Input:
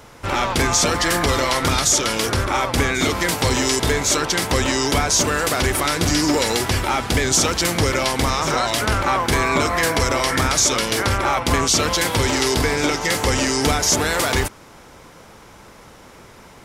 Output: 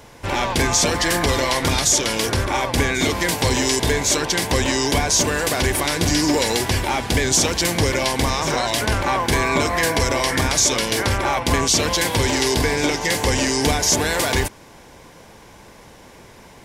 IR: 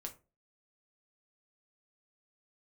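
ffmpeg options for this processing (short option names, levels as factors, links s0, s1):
-af "bandreject=f=1300:w=5.3"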